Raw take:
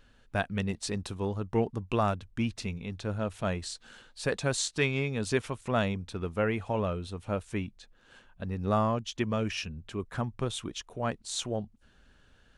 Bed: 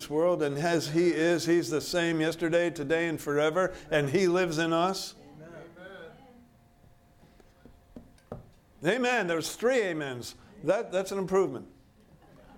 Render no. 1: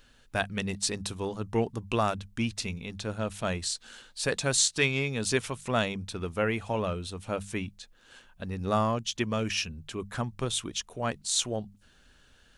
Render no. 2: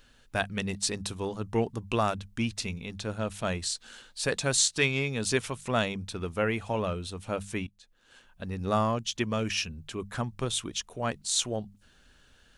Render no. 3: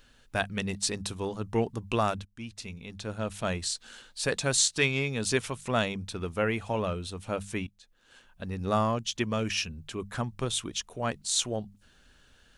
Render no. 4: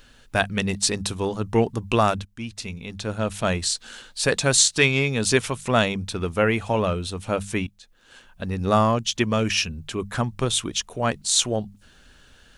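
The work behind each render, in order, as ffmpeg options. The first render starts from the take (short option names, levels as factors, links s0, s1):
-af "highshelf=f=2900:g=9.5,bandreject=f=50:t=h:w=6,bandreject=f=100:t=h:w=6,bandreject=f=150:t=h:w=6,bandreject=f=200:t=h:w=6"
-filter_complex "[0:a]asplit=2[s0][s1];[s0]atrim=end=7.67,asetpts=PTS-STARTPTS,afade=t=out:st=7.666:d=0.004:c=hsin:silence=0.177828[s2];[s1]atrim=start=7.67,asetpts=PTS-STARTPTS,afade=t=in:d=0.82:silence=0.177828[s3];[s2][s3]concat=n=2:v=0:a=1"
-filter_complex "[0:a]asplit=2[s0][s1];[s0]atrim=end=2.25,asetpts=PTS-STARTPTS,afade=t=out:st=2.246:d=0.004:c=hsin:silence=0.141254[s2];[s1]atrim=start=2.25,asetpts=PTS-STARTPTS,afade=t=in:d=1.11:silence=0.141254[s3];[s2][s3]concat=n=2:v=0:a=1"
-af "volume=2.37,alimiter=limit=0.708:level=0:latency=1"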